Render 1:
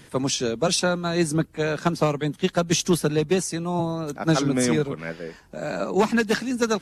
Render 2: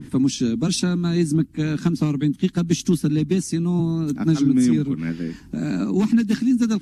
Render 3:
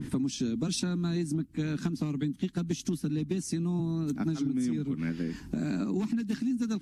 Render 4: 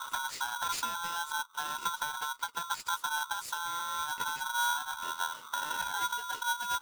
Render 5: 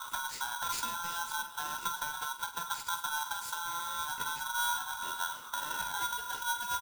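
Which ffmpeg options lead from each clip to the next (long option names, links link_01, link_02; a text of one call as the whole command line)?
ffmpeg -i in.wav -af "lowshelf=frequency=380:width_type=q:width=3:gain=11.5,acompressor=threshold=-24dB:ratio=2,adynamicequalizer=threshold=0.00631:dfrequency=1900:dqfactor=0.7:tfrequency=1900:tqfactor=0.7:attack=5:release=100:ratio=0.375:range=2.5:mode=boostabove:tftype=highshelf" out.wav
ffmpeg -i in.wav -af "acompressor=threshold=-28dB:ratio=6" out.wav
ffmpeg -i in.wav -af "flanger=delay=7.8:depth=3.9:regen=29:speed=0.86:shape=triangular,aeval=exprs='val(0)*sgn(sin(2*PI*1200*n/s))':channel_layout=same" out.wav
ffmpeg -i in.wav -af "crystalizer=i=0.5:c=0,lowshelf=frequency=220:gain=6,aecho=1:1:46|104|375|554:0.316|0.141|0.188|0.2,volume=-3dB" out.wav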